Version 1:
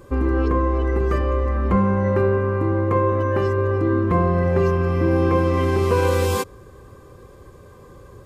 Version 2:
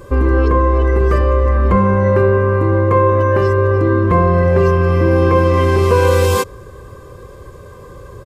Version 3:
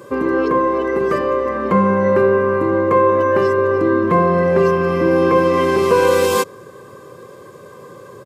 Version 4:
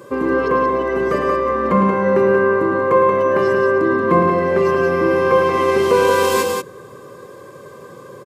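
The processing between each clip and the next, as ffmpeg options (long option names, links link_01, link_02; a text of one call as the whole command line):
ffmpeg -i in.wav -filter_complex "[0:a]aecho=1:1:1.9:0.31,asplit=2[link_01][link_02];[link_02]alimiter=limit=-15.5dB:level=0:latency=1,volume=-2.5dB[link_03];[link_01][link_03]amix=inputs=2:normalize=0,volume=2.5dB" out.wav
ffmpeg -i in.wav -af "highpass=frequency=150:width=0.5412,highpass=frequency=150:width=1.3066" out.wav
ffmpeg -i in.wav -af "bandreject=frequency=50:width_type=h:width=6,bandreject=frequency=100:width_type=h:width=6,aecho=1:1:107.9|180.8:0.398|0.562,volume=-1dB" out.wav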